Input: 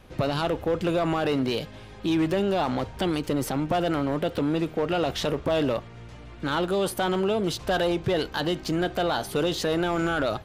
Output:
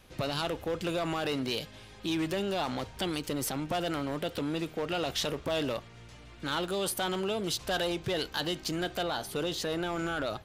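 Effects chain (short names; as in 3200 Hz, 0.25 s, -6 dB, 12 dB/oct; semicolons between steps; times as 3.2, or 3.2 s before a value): high shelf 2300 Hz +10.5 dB, from 9.03 s +5 dB; gain -8 dB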